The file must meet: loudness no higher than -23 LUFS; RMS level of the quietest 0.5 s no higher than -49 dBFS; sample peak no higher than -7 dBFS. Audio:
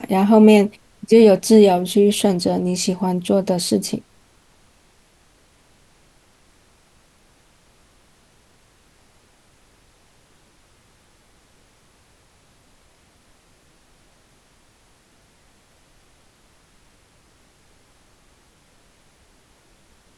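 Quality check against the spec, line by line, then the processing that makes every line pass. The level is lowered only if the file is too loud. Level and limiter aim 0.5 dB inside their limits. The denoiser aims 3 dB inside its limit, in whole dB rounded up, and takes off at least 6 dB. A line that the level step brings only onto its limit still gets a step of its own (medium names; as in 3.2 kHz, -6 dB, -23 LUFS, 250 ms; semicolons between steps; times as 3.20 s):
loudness -16.0 LUFS: fail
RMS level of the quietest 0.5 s -56 dBFS: pass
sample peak -2.5 dBFS: fail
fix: trim -7.5 dB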